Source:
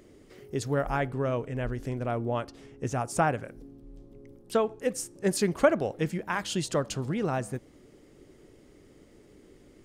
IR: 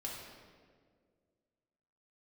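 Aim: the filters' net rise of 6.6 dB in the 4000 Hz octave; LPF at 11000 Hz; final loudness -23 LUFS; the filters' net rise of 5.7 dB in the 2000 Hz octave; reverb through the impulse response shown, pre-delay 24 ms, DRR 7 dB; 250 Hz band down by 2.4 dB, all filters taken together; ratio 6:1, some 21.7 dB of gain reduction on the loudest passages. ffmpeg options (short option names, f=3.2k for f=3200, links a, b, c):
-filter_complex "[0:a]lowpass=11k,equalizer=f=250:t=o:g=-3.5,equalizer=f=2k:t=o:g=6.5,equalizer=f=4k:t=o:g=6.5,acompressor=threshold=-39dB:ratio=6,asplit=2[a][b];[1:a]atrim=start_sample=2205,adelay=24[c];[b][c]afir=irnorm=-1:irlink=0,volume=-7dB[d];[a][d]amix=inputs=2:normalize=0,volume=19dB"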